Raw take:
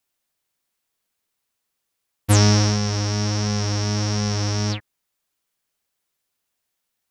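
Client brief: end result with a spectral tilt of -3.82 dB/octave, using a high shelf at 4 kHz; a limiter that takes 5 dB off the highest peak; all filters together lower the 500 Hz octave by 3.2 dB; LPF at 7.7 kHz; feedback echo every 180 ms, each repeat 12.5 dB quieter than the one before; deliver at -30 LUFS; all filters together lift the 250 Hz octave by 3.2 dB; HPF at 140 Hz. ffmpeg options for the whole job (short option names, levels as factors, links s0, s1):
-af "highpass=140,lowpass=7700,equalizer=f=250:t=o:g=6.5,equalizer=f=500:t=o:g=-6.5,highshelf=f=4000:g=4.5,alimiter=limit=0.447:level=0:latency=1,aecho=1:1:180|360|540:0.237|0.0569|0.0137,volume=0.398"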